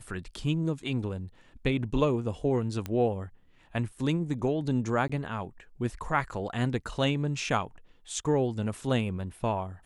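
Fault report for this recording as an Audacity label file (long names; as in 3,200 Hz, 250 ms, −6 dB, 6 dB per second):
2.860000	2.860000	click −19 dBFS
5.080000	5.090000	drop-out 15 ms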